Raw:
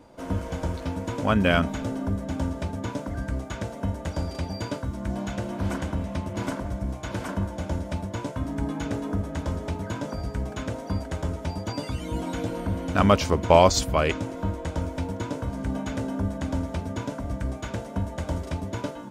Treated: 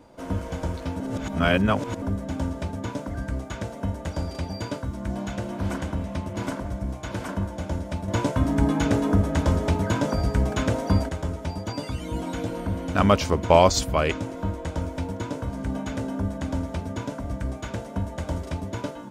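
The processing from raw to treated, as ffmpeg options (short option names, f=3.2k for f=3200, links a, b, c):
-filter_complex "[0:a]asplit=5[a][b][c][d][e];[a]atrim=end=1.002[f];[b]atrim=start=0.998:end=2.022,asetpts=PTS-STARTPTS,areverse[g];[c]atrim=start=2.018:end=8.082[h];[d]atrim=start=8.078:end=11.092,asetpts=PTS-STARTPTS,volume=7.5dB[i];[e]atrim=start=11.088[j];[f][g]acrossfade=d=0.004:c1=hsin:c2=hsin[k];[k][h]acrossfade=d=0.004:c1=hsin:c2=hsin[l];[l][i]acrossfade=d=0.004:c1=hsin:c2=hsin[m];[m][j]acrossfade=d=0.004:c1=hsin:c2=hsin"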